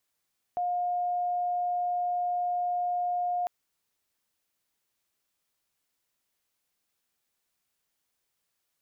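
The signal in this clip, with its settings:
tone sine 712 Hz −26 dBFS 2.90 s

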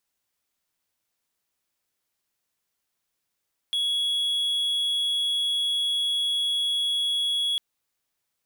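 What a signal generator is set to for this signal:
tone triangle 3,350 Hz −20.5 dBFS 3.85 s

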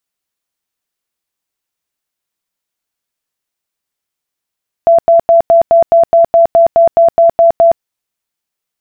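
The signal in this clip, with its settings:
tone bursts 672 Hz, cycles 78, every 0.21 s, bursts 14, −3 dBFS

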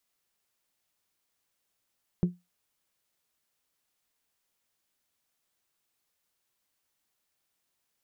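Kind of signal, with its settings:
struck glass bell, lowest mode 177 Hz, decay 0.21 s, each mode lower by 10 dB, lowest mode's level −17.5 dB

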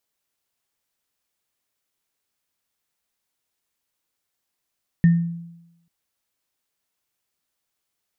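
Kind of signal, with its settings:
inharmonic partials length 0.84 s, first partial 169 Hz, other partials 1,820 Hz, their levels −19 dB, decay 0.90 s, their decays 0.32 s, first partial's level −9 dB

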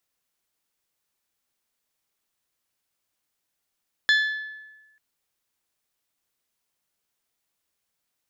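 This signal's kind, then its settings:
struck glass bell, lowest mode 1,730 Hz, decay 1.17 s, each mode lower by 6 dB, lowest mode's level −15 dB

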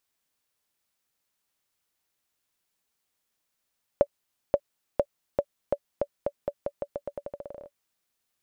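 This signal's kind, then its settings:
bouncing ball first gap 0.53 s, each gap 0.86, 572 Hz, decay 58 ms −8 dBFS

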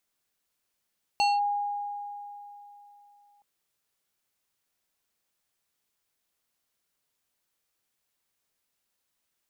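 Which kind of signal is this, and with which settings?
two-operator FM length 2.22 s, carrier 818 Hz, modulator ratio 4.34, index 0.82, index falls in 0.20 s linear, decay 3.25 s, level −19.5 dB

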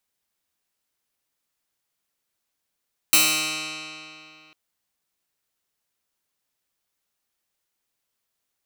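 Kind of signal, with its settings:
Karplus-Strong string D#3, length 1.40 s, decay 2.80 s, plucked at 0.09, bright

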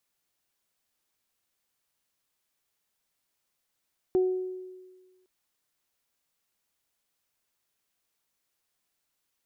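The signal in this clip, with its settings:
harmonic partials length 1.11 s, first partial 370 Hz, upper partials −19 dB, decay 1.44 s, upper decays 0.70 s, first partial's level −19 dB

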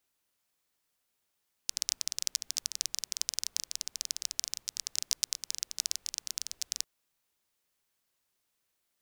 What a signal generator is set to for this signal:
rain-like ticks over hiss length 5.15 s, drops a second 18, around 5,600 Hz, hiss −30 dB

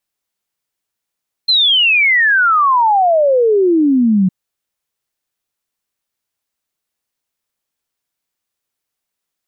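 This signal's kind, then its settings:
exponential sine sweep 4,200 Hz → 180 Hz 2.81 s −8.5 dBFS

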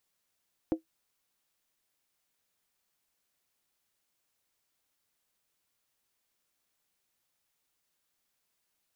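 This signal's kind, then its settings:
struck skin, lowest mode 322 Hz, decay 0.12 s, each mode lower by 9 dB, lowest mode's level −20 dB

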